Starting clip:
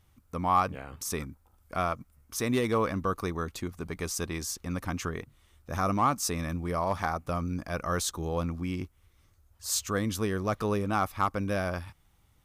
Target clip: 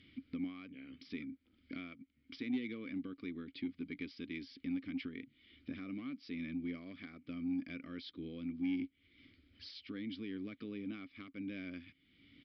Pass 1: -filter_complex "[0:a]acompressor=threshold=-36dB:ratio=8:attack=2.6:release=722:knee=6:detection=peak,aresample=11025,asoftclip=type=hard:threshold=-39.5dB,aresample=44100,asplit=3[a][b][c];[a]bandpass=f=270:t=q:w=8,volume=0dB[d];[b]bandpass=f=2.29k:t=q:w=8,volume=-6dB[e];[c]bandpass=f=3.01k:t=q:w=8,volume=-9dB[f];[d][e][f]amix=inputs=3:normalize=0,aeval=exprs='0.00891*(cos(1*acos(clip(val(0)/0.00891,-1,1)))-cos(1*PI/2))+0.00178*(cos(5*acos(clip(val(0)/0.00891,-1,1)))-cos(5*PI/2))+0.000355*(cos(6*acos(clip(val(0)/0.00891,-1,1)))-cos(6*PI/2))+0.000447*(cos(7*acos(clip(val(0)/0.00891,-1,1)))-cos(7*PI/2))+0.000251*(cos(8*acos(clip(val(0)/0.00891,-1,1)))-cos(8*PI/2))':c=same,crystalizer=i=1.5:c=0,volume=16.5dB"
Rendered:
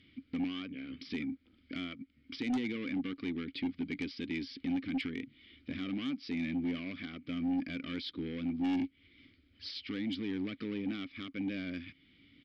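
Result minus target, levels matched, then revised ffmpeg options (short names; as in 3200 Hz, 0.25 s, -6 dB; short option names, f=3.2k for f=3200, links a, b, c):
compressor: peak gain reduction -9 dB
-filter_complex "[0:a]acompressor=threshold=-46dB:ratio=8:attack=2.6:release=722:knee=6:detection=peak,aresample=11025,asoftclip=type=hard:threshold=-39.5dB,aresample=44100,asplit=3[a][b][c];[a]bandpass=f=270:t=q:w=8,volume=0dB[d];[b]bandpass=f=2.29k:t=q:w=8,volume=-6dB[e];[c]bandpass=f=3.01k:t=q:w=8,volume=-9dB[f];[d][e][f]amix=inputs=3:normalize=0,aeval=exprs='0.00891*(cos(1*acos(clip(val(0)/0.00891,-1,1)))-cos(1*PI/2))+0.00178*(cos(5*acos(clip(val(0)/0.00891,-1,1)))-cos(5*PI/2))+0.000355*(cos(6*acos(clip(val(0)/0.00891,-1,1)))-cos(6*PI/2))+0.000447*(cos(7*acos(clip(val(0)/0.00891,-1,1)))-cos(7*PI/2))+0.000251*(cos(8*acos(clip(val(0)/0.00891,-1,1)))-cos(8*PI/2))':c=same,crystalizer=i=1.5:c=0,volume=16.5dB"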